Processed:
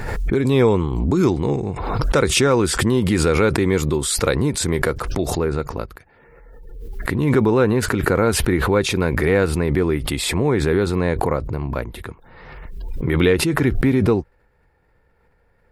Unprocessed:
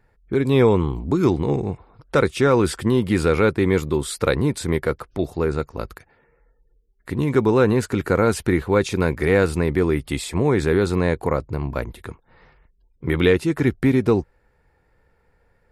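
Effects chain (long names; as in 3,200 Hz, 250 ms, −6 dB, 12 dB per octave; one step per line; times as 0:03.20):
parametric band 6,900 Hz +4.5 dB 1 octave, from 0:05.38 −4.5 dB
background raised ahead of every attack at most 33 dB per second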